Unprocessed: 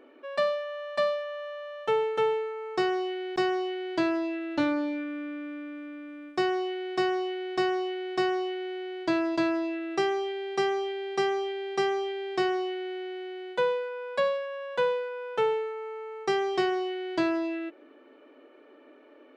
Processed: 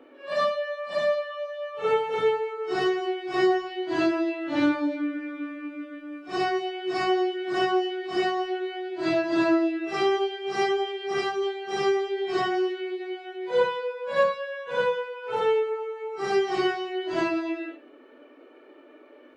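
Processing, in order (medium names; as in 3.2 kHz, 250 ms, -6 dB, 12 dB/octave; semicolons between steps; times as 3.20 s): phase randomisation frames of 200 ms; trim +3 dB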